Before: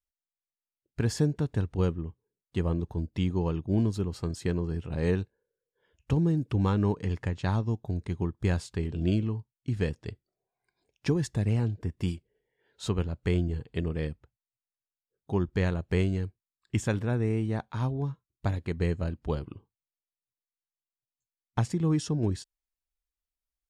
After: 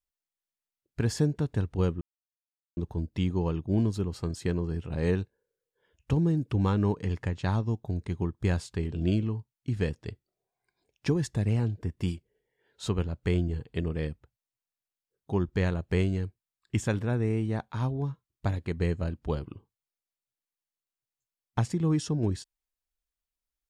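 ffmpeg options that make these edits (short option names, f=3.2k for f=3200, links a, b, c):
-filter_complex "[0:a]asplit=3[a][b][c];[a]atrim=end=2.01,asetpts=PTS-STARTPTS,afade=t=out:st=2.006:d=0.004:c=hsin[d];[b]atrim=start=2.01:end=2.77,asetpts=PTS-STARTPTS,volume=0[e];[c]atrim=start=2.77,asetpts=PTS-STARTPTS,afade=t=in:d=0.004:c=hsin[f];[d][e][f]concat=n=3:v=0:a=1"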